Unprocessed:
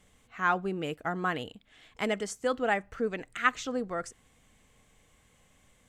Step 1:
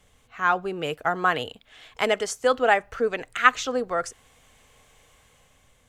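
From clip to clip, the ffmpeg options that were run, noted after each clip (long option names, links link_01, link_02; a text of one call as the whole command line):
ffmpeg -i in.wav -filter_complex "[0:a]equalizer=frequency=200:width_type=o:width=0.33:gain=-9,equalizer=frequency=315:width_type=o:width=0.33:gain=-6,equalizer=frequency=2000:width_type=o:width=0.33:gain=-3,equalizer=frequency=8000:width_type=o:width=0.33:gain=-4,acrossover=split=360[link_01][link_02];[link_02]dynaudnorm=framelen=130:gausssize=11:maxgain=5.5dB[link_03];[link_01][link_03]amix=inputs=2:normalize=0,volume=4dB" out.wav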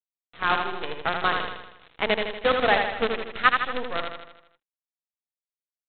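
ffmpeg -i in.wav -af "aresample=8000,acrusher=bits=4:dc=4:mix=0:aa=0.000001,aresample=44100,aecho=1:1:79|158|237|316|395|474|553:0.562|0.304|0.164|0.0885|0.0478|0.0258|0.0139,volume=-2.5dB" out.wav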